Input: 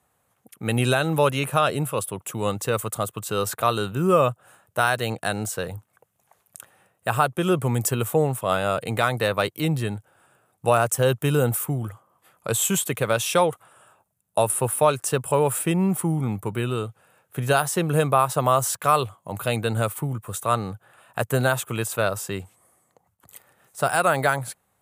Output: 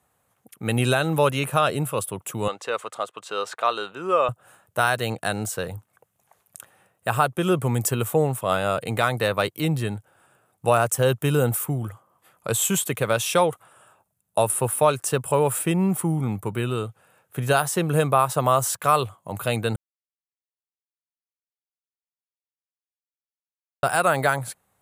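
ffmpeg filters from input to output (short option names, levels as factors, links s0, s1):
-filter_complex "[0:a]asettb=1/sr,asplit=3[s0][s1][s2];[s0]atrim=end=2.484[s3];[s1]atrim=start=2.48:end=4.29,asetpts=PTS-STARTPTS,afade=t=in:d=0.004:c=qsin,afade=t=out:st=1.806:d=0.004:c=qsin,highpass=500,lowpass=4700[s4];[s2]atrim=start=4.286[s5];[s3][s4]acrossfade=d=0.004:c1=hsin:c2=qsin[s6];[s6][s5]acrossfade=d=0.004:c1=qsin:c2=hsin,asplit=3[s7][s8][s9];[s7]atrim=end=19.76,asetpts=PTS-STARTPTS,afade=t=out:st=19.756:d=0.004:c=hsin[s10];[s8]atrim=start=19.76:end=23.83,asetpts=PTS-STARTPTS,volume=0[s11];[s9]atrim=start=23.83,asetpts=PTS-STARTPTS,afade=t=in:d=0.004:c=hsin[s12];[s10][s11][s12]concat=n=3:v=0:a=1"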